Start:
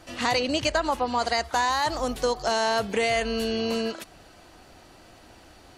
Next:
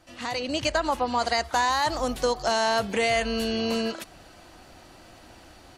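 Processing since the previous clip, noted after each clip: band-stop 430 Hz, Q 12; level rider gain up to 9.5 dB; trim -8 dB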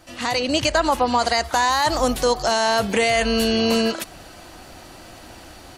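treble shelf 9.2 kHz +6.5 dB; peak limiter -16 dBFS, peak gain reduction 4.5 dB; trim +7.5 dB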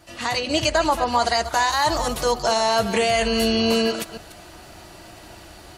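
chunks repeated in reverse 149 ms, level -11.5 dB; comb of notches 260 Hz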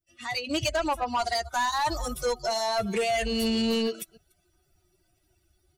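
expander on every frequency bin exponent 2; saturation -21 dBFS, distortion -13 dB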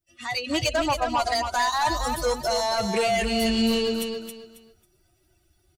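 feedback delay 272 ms, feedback 26%, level -6 dB; trim +2.5 dB

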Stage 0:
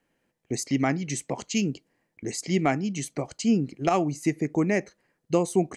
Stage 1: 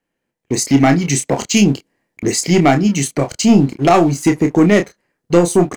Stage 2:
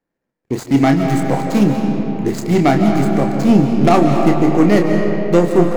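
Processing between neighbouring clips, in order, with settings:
waveshaping leveller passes 2; doubling 29 ms -7 dB; level rider
median filter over 15 samples; on a send at -3 dB: reverberation RT60 3.6 s, pre-delay 110 ms; on the sum: trim -1.5 dB

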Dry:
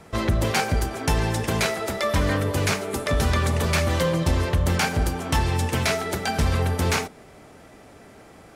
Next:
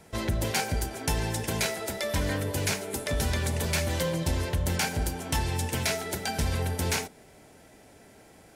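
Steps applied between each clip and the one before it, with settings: treble shelf 5.5 kHz +8.5 dB; band-stop 1.2 kHz, Q 5.3; trim -6.5 dB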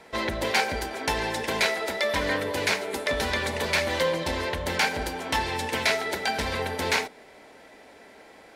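graphic EQ 125/250/500/1000/2000/4000 Hz -6/+6/+9/+10/+11/+10 dB; trim -6.5 dB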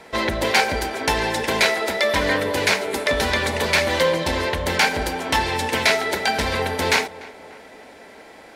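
tape echo 296 ms, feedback 62%, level -18.5 dB, low-pass 2 kHz; trim +6 dB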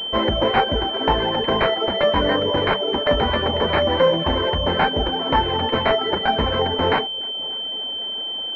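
reverb removal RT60 0.66 s; saturation -7 dBFS, distortion -25 dB; class-D stage that switches slowly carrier 3.1 kHz; trim +5 dB

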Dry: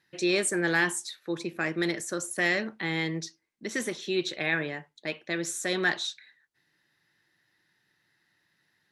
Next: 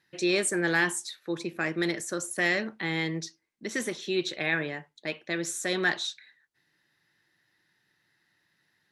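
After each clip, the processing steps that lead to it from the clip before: no audible change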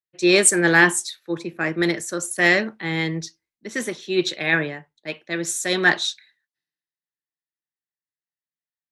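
three bands expanded up and down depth 100%; trim +7 dB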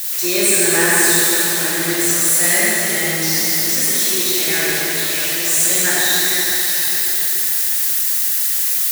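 zero-crossing glitches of -8 dBFS; reverberation RT60 4.7 s, pre-delay 18 ms, DRR -8 dB; trim -8 dB

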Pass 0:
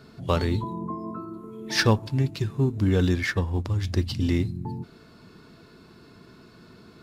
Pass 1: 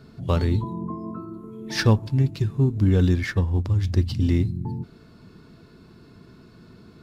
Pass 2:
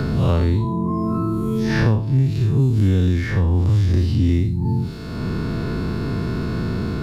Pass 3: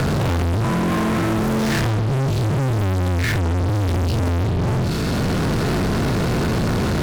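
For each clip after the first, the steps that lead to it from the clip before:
bass shelf 280 Hz +8.5 dB; trim -3 dB
spectral blur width 123 ms; three bands compressed up and down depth 100%; trim +5.5 dB
fuzz box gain 36 dB, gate -41 dBFS; trim -5 dB

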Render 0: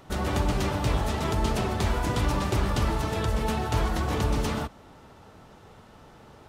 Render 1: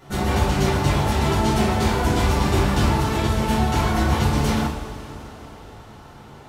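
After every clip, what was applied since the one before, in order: two-slope reverb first 0.5 s, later 4.1 s, from -18 dB, DRR -9 dB; trim -2.5 dB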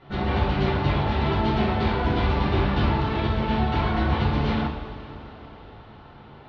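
steep low-pass 4.1 kHz 36 dB/octave; trim -3 dB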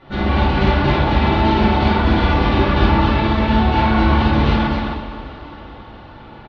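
comb 3.5 ms, depth 37%; on a send: loudspeakers at several distances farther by 19 m -3 dB, 91 m -3 dB; on the sum: trim +4.5 dB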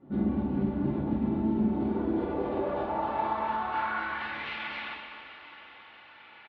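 compression, threshold -17 dBFS, peak gain reduction 8.5 dB; band-pass sweep 240 Hz -> 2.3 kHz, 1.63–4.57 s

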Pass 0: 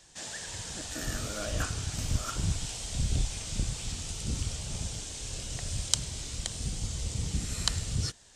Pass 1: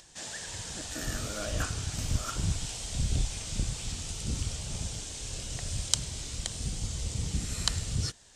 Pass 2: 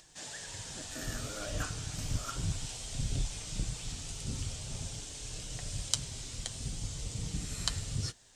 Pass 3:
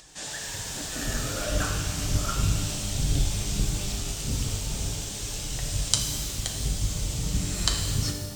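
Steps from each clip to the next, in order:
upward compressor, threshold -52 dBFS
flange 0.55 Hz, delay 6.4 ms, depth 1.6 ms, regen -46%; crackle 560 per s -65 dBFS
pitch-shifted reverb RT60 1.4 s, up +12 st, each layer -8 dB, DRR 2.5 dB; trim +7 dB

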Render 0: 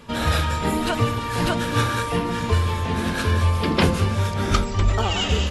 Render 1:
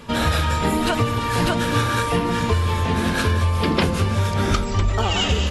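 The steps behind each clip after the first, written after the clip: compression, threshold -20 dBFS, peak gain reduction 7.5 dB; trim +4.5 dB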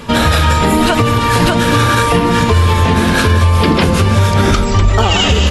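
loudness maximiser +11.5 dB; trim -1 dB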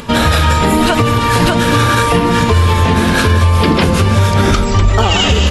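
upward compressor, threshold -29 dBFS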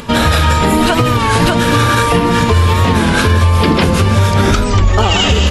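warped record 33 1/3 rpm, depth 100 cents

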